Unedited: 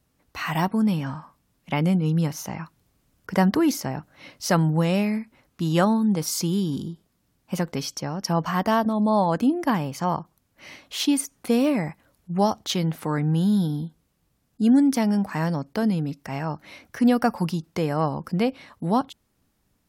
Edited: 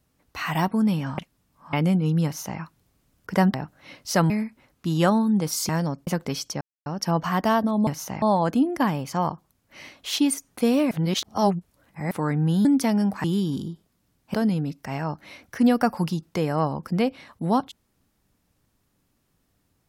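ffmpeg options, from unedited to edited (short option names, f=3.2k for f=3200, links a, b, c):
-filter_complex "[0:a]asplit=15[a][b][c][d][e][f][g][h][i][j][k][l][m][n][o];[a]atrim=end=1.182[p];[b]atrim=start=1.178:end=1.732,asetpts=PTS-STARTPTS,areverse[q];[c]atrim=start=1.728:end=3.542[r];[d]atrim=start=3.888:end=4.652[s];[e]atrim=start=5.048:end=6.442[t];[f]atrim=start=15.368:end=15.752[u];[g]atrim=start=7.538:end=8.08,asetpts=PTS-STARTPTS,afade=t=out:st=0.538:d=0.004:c=hsin,apad=pad_dur=0.25[v];[h]atrim=start=8.08:end=9.092,asetpts=PTS-STARTPTS,afade=t=in:d=0.004:c=hsin[w];[i]atrim=start=2.248:end=2.602[x];[j]atrim=start=9.088:end=11.782[y];[k]atrim=start=11.778:end=12.982,asetpts=PTS-STARTPTS,areverse[z];[l]atrim=start=12.978:end=13.522[aa];[m]atrim=start=14.778:end=15.372[ab];[n]atrim=start=6.438:end=7.542[ac];[o]atrim=start=15.748[ad];[p][q]acrossfade=d=0.004:c1=hsin:c2=hsin[ae];[ae][r]acrossfade=d=0.004:c1=hsin:c2=hsin[af];[af][s]acrossfade=d=0.004:c1=hsin:c2=hsin[ag];[ag][t]acrossfade=d=0.004:c1=hsin:c2=hsin[ah];[ah][u]acrossfade=d=0.004:c1=hsin:c2=hsin[ai];[v][w]concat=n=2:v=0:a=1[aj];[ai][aj]acrossfade=d=0.004:c1=hsin:c2=hsin[ak];[ak][x]acrossfade=d=0.004:c1=hsin:c2=hsin[al];[al][y]acrossfade=d=0.004:c1=hsin:c2=hsin[am];[am][z]acrossfade=d=0.004:c1=hsin:c2=hsin[an];[an][aa]acrossfade=d=0.004:c1=hsin:c2=hsin[ao];[ao][ab]acrossfade=d=0.004:c1=hsin:c2=hsin[ap];[ap][ac]acrossfade=d=0.004:c1=hsin:c2=hsin[aq];[aq][ad]acrossfade=d=0.004:c1=hsin:c2=hsin"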